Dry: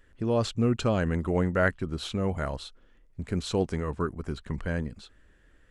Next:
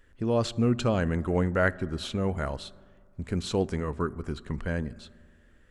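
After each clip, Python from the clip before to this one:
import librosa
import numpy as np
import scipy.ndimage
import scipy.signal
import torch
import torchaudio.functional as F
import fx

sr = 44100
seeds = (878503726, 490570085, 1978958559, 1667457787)

y = fx.rev_fdn(x, sr, rt60_s=2.0, lf_ratio=1.0, hf_ratio=0.3, size_ms=25.0, drr_db=19.0)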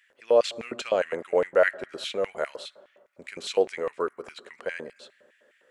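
y = fx.filter_lfo_highpass(x, sr, shape='square', hz=4.9, low_hz=510.0, high_hz=2200.0, q=3.1)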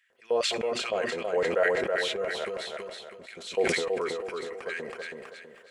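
y = fx.notch_comb(x, sr, f0_hz=290.0)
y = fx.echo_feedback(y, sr, ms=324, feedback_pct=39, wet_db=-4.0)
y = fx.sustainer(y, sr, db_per_s=32.0)
y = y * 10.0 ** (-4.5 / 20.0)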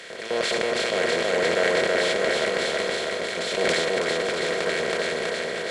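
y = fx.bin_compress(x, sr, power=0.2)
y = y + 10.0 ** (-9.0 / 20.0) * np.pad(y, (int(795 * sr / 1000.0), 0))[:len(y)]
y = fx.band_widen(y, sr, depth_pct=70)
y = y * 10.0 ** (-4.0 / 20.0)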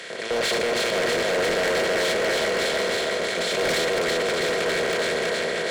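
y = scipy.signal.sosfilt(scipy.signal.butter(4, 81.0, 'highpass', fs=sr, output='sos'), x)
y = np.clip(10.0 ** (23.5 / 20.0) * y, -1.0, 1.0) / 10.0 ** (23.5 / 20.0)
y = y * 10.0 ** (3.5 / 20.0)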